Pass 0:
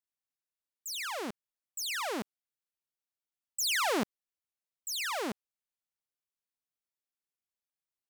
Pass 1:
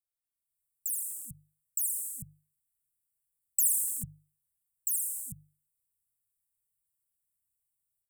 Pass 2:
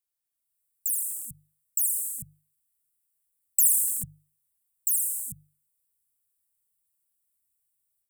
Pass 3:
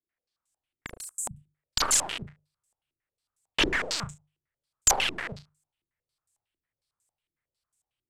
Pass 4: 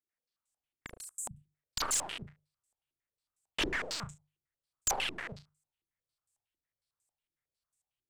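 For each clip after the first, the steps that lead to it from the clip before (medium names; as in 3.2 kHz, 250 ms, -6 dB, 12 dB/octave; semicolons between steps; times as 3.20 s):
Chebyshev band-stop 150–8000 Hz, order 5; hum notches 50/100/150 Hz; level rider gain up to 11.5 dB; trim +2 dB
treble shelf 5 kHz +6.5 dB
integer overflow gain 18.5 dB; flutter echo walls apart 6 m, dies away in 0.24 s; step-sequenced low-pass 11 Hz 340–7000 Hz; trim +3.5 dB
saturation -17.5 dBFS, distortion -13 dB; trim -6 dB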